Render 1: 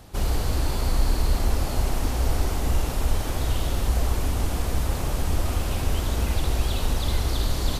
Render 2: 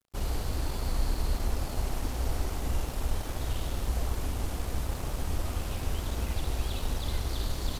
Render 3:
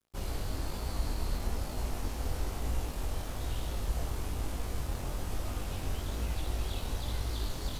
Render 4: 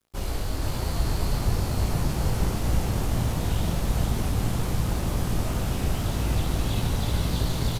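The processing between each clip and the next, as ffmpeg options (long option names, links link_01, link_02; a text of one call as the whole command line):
ffmpeg -i in.wav -af "aeval=exprs='sgn(val(0))*max(abs(val(0))-0.01,0)':channel_layout=same,volume=-6.5dB" out.wav
ffmpeg -i in.wav -af "flanger=delay=19:depth=3.4:speed=1.1" out.wav
ffmpeg -i in.wav -filter_complex "[0:a]asplit=8[link_01][link_02][link_03][link_04][link_05][link_06][link_07][link_08];[link_02]adelay=472,afreqshift=57,volume=-3.5dB[link_09];[link_03]adelay=944,afreqshift=114,volume=-8.9dB[link_10];[link_04]adelay=1416,afreqshift=171,volume=-14.2dB[link_11];[link_05]adelay=1888,afreqshift=228,volume=-19.6dB[link_12];[link_06]adelay=2360,afreqshift=285,volume=-24.9dB[link_13];[link_07]adelay=2832,afreqshift=342,volume=-30.3dB[link_14];[link_08]adelay=3304,afreqshift=399,volume=-35.6dB[link_15];[link_01][link_09][link_10][link_11][link_12][link_13][link_14][link_15]amix=inputs=8:normalize=0,volume=6.5dB" out.wav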